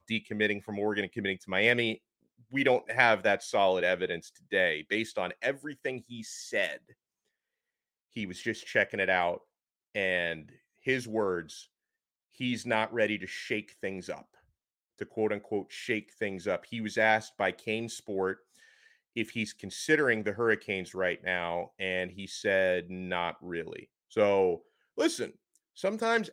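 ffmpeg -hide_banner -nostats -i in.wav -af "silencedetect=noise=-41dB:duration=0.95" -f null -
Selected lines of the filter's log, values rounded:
silence_start: 6.77
silence_end: 8.17 | silence_duration: 1.40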